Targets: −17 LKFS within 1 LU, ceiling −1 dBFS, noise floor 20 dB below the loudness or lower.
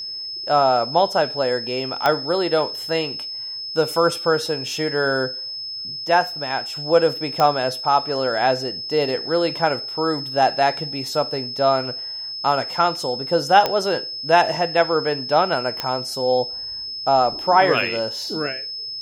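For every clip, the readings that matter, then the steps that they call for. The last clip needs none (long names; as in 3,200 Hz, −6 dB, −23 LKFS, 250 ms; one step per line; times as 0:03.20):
number of clicks 4; interfering tone 5,200 Hz; level of the tone −28 dBFS; integrated loudness −20.5 LKFS; sample peak −1.5 dBFS; target loudness −17.0 LKFS
→ click removal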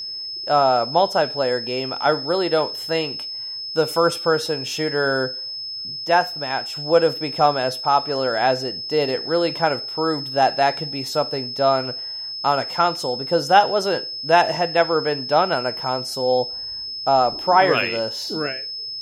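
number of clicks 0; interfering tone 5,200 Hz; level of the tone −28 dBFS
→ notch filter 5,200 Hz, Q 30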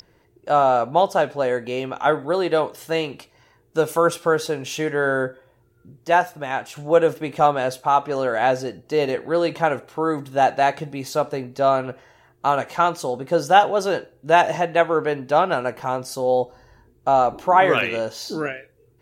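interfering tone none found; integrated loudness −21.0 LKFS; sample peak −2.0 dBFS; target loudness −17.0 LKFS
→ level +4 dB
brickwall limiter −1 dBFS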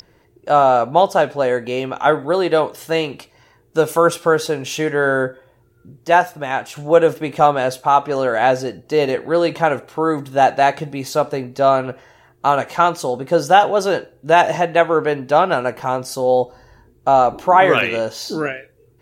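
integrated loudness −17.5 LKFS; sample peak −1.0 dBFS; background noise floor −55 dBFS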